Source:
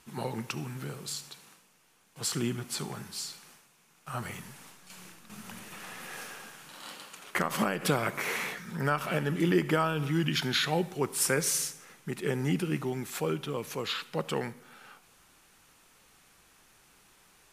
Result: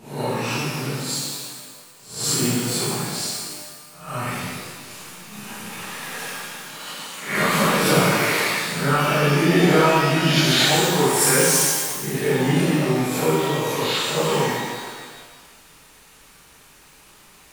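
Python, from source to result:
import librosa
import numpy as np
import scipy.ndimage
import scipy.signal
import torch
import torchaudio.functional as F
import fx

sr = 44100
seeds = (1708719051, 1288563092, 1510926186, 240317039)

y = fx.spec_swells(x, sr, rise_s=0.5)
y = fx.rev_shimmer(y, sr, seeds[0], rt60_s=1.5, semitones=12, shimmer_db=-8, drr_db=-8.5)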